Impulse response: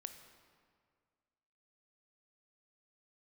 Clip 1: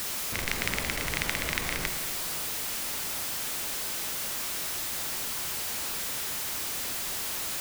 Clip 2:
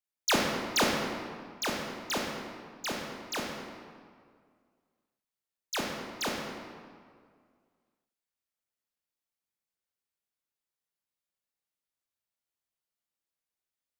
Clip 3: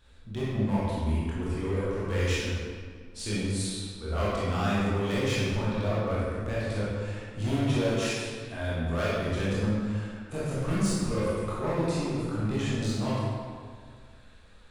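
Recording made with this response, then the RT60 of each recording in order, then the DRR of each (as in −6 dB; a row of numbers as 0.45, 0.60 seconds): 1; 2.0, 2.0, 2.0 seconds; 7.5, −1.0, −9.0 decibels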